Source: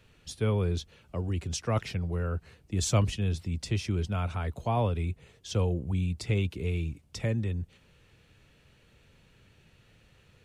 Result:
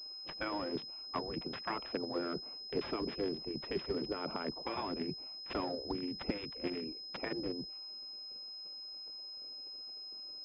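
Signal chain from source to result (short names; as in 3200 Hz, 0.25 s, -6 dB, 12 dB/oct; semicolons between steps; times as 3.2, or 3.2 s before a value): Wiener smoothing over 25 samples; HPF 68 Hz 12 dB/oct; spectral gate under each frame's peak -15 dB weak; 2.11–4.27 dynamic EQ 370 Hz, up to +7 dB, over -53 dBFS, Q 1.9; limiter -37 dBFS, peak gain reduction 18.5 dB; transient shaper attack +8 dB, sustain +3 dB; pulse-width modulation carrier 5100 Hz; gain +6.5 dB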